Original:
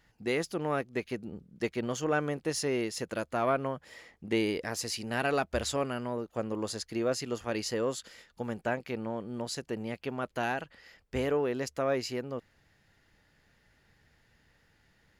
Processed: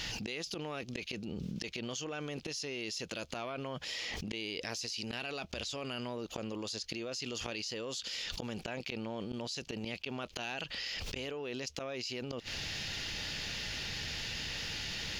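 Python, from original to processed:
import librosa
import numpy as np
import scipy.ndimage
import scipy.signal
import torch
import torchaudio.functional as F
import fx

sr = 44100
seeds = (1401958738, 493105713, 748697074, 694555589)

y = fx.gate_flip(x, sr, shuts_db=-30.0, range_db=-35)
y = fx.band_shelf(y, sr, hz=4000.0, db=14.0, octaves=1.7)
y = fx.env_flatten(y, sr, amount_pct=100)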